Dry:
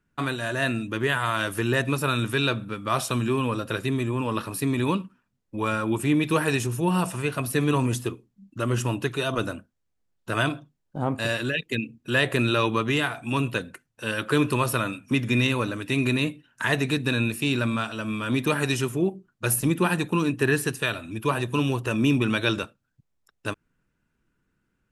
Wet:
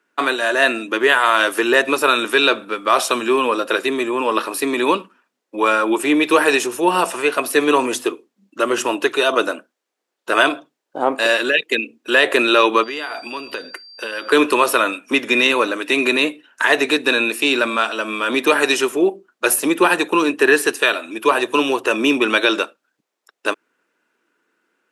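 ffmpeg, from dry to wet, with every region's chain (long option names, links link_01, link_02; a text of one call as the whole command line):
ffmpeg -i in.wav -filter_complex "[0:a]asettb=1/sr,asplit=3[link_01][link_02][link_03];[link_01]atrim=end=12.834[link_04];[link_02]atrim=start=12.83:end=14.32,asetpts=PTS-STARTPTS,afade=type=in:duration=0.004:curve=qsin,afade=type=out:start_time=1.486:duration=0.004:curve=qsin,equalizer=frequency=7800:width_type=o:width=0.44:gain=-5.5,acompressor=threshold=-31dB:ratio=16:attack=3.2:release=140:knee=1:detection=peak,aeval=exprs='val(0)+0.00355*sin(2*PI*4700*n/s)':channel_layout=same[link_05];[link_03]atrim=start=14.316[link_06];[link_04][link_05]acrossfade=duration=0.004:curve1=hsin:curve2=qsin[link_07];[link_07][link_06]acrossfade=duration=0.004:curve1=qsin:curve2=hsin,highpass=frequency=340:width=0.5412,highpass=frequency=340:width=1.3066,highshelf=frequency=8400:gain=-7.5,alimiter=level_in=12.5dB:limit=-1dB:release=50:level=0:latency=1,volume=-1dB" out.wav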